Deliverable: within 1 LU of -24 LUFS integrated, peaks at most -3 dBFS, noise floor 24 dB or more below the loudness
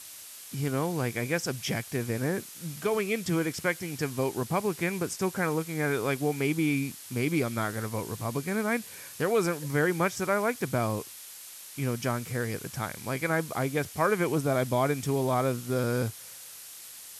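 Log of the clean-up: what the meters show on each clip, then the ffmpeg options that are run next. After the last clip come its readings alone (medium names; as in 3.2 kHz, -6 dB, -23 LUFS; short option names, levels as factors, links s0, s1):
noise floor -46 dBFS; noise floor target -54 dBFS; loudness -29.5 LUFS; peak level -12.5 dBFS; loudness target -24.0 LUFS
-> -af "afftdn=nr=8:nf=-46"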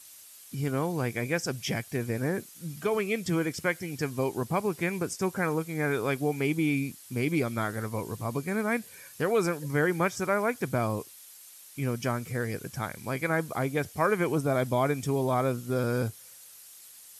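noise floor -51 dBFS; noise floor target -54 dBFS
-> -af "afftdn=nr=6:nf=-51"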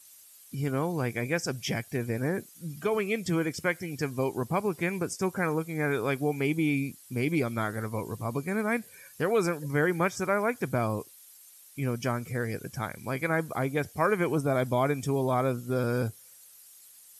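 noise floor -54 dBFS; loudness -29.5 LUFS; peak level -12.5 dBFS; loudness target -24.0 LUFS
-> -af "volume=1.88"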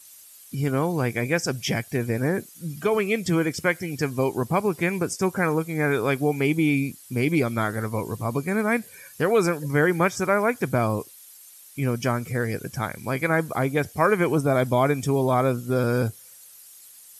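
loudness -24.0 LUFS; peak level -7.0 dBFS; noise floor -48 dBFS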